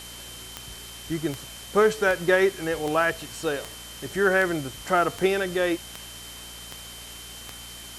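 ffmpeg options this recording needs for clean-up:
ffmpeg -i in.wav -af "adeclick=threshold=4,bandreject=frequency=58.4:width_type=h:width=4,bandreject=frequency=116.8:width_type=h:width=4,bandreject=frequency=175.2:width_type=h:width=4,bandreject=frequency=233.6:width_type=h:width=4,bandreject=frequency=292:width_type=h:width=4,bandreject=frequency=3100:width=30,afwtdn=0.0089" out.wav

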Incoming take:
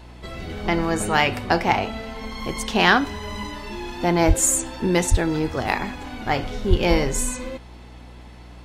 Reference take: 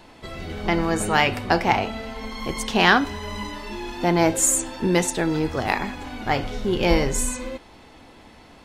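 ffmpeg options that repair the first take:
ffmpeg -i in.wav -filter_complex "[0:a]bandreject=frequency=60.4:width_type=h:width=4,bandreject=frequency=120.8:width_type=h:width=4,bandreject=frequency=181.2:width_type=h:width=4,bandreject=frequency=241.6:width_type=h:width=4,bandreject=frequency=302:width_type=h:width=4,bandreject=frequency=362.4:width_type=h:width=4,asplit=3[link_01][link_02][link_03];[link_01]afade=type=out:start_time=4.27:duration=0.02[link_04];[link_02]highpass=frequency=140:width=0.5412,highpass=frequency=140:width=1.3066,afade=type=in:start_time=4.27:duration=0.02,afade=type=out:start_time=4.39:duration=0.02[link_05];[link_03]afade=type=in:start_time=4.39:duration=0.02[link_06];[link_04][link_05][link_06]amix=inputs=3:normalize=0,asplit=3[link_07][link_08][link_09];[link_07]afade=type=out:start_time=5.1:duration=0.02[link_10];[link_08]highpass=frequency=140:width=0.5412,highpass=frequency=140:width=1.3066,afade=type=in:start_time=5.1:duration=0.02,afade=type=out:start_time=5.22:duration=0.02[link_11];[link_09]afade=type=in:start_time=5.22:duration=0.02[link_12];[link_10][link_11][link_12]amix=inputs=3:normalize=0,asplit=3[link_13][link_14][link_15];[link_13]afade=type=out:start_time=6.69:duration=0.02[link_16];[link_14]highpass=frequency=140:width=0.5412,highpass=frequency=140:width=1.3066,afade=type=in:start_time=6.69:duration=0.02,afade=type=out:start_time=6.81:duration=0.02[link_17];[link_15]afade=type=in:start_time=6.81:duration=0.02[link_18];[link_16][link_17][link_18]amix=inputs=3:normalize=0" out.wav

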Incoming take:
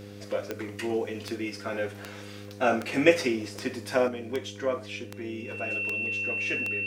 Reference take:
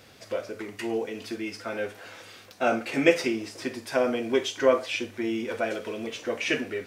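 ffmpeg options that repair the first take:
ffmpeg -i in.wav -af "adeclick=threshold=4,bandreject=frequency=101.5:width_type=h:width=4,bandreject=frequency=203:width_type=h:width=4,bandreject=frequency=304.5:width_type=h:width=4,bandreject=frequency=406:width_type=h:width=4,bandreject=frequency=507.5:width_type=h:width=4,bandreject=frequency=2700:width=30,asetnsamples=nb_out_samples=441:pad=0,asendcmd='4.08 volume volume 8dB',volume=0dB" out.wav

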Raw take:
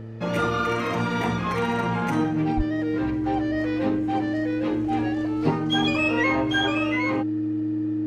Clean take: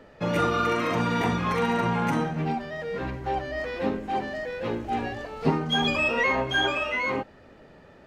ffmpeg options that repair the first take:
ffmpeg -i in.wav -filter_complex "[0:a]bandreject=frequency=112.3:width_type=h:width=4,bandreject=frequency=224.6:width_type=h:width=4,bandreject=frequency=336.9:width_type=h:width=4,bandreject=frequency=449.2:width_type=h:width=4,bandreject=frequency=310:width=30,asplit=3[link_01][link_02][link_03];[link_01]afade=type=out:start_time=2.56:duration=0.02[link_04];[link_02]highpass=frequency=140:width=0.5412,highpass=frequency=140:width=1.3066,afade=type=in:start_time=2.56:duration=0.02,afade=type=out:start_time=2.68:duration=0.02[link_05];[link_03]afade=type=in:start_time=2.68:duration=0.02[link_06];[link_04][link_05][link_06]amix=inputs=3:normalize=0" out.wav

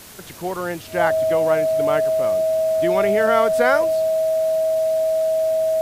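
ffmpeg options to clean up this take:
ffmpeg -i in.wav -af "bandreject=frequency=640:width=30,afwtdn=0.0089" out.wav

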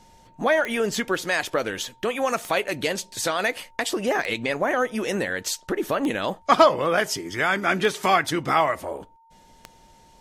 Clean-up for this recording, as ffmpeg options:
ffmpeg -i in.wav -af "adeclick=threshold=4,bandreject=frequency=910:width=30" out.wav

